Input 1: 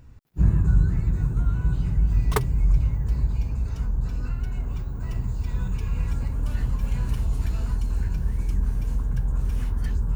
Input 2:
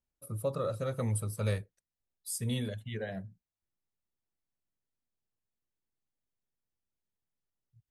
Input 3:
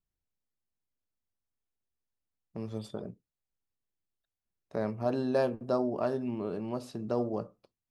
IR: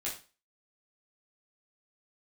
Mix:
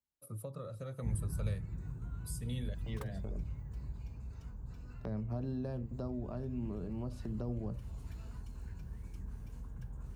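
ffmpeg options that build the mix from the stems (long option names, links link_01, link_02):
-filter_complex "[0:a]adelay=650,volume=-17dB[link_01];[1:a]volume=-5.5dB,asplit=2[link_02][link_03];[2:a]agate=range=-7dB:threshold=-44dB:ratio=16:detection=peak,lowshelf=frequency=170:gain=10,adelay=300,volume=-4dB[link_04];[link_03]apad=whole_len=361657[link_05];[link_04][link_05]sidechaincompress=threshold=-44dB:ratio=8:attack=16:release=1040[link_06];[link_01][link_02][link_06]amix=inputs=3:normalize=0,highpass=54,acrossover=split=210[link_07][link_08];[link_08]acompressor=threshold=-44dB:ratio=6[link_09];[link_07][link_09]amix=inputs=2:normalize=0"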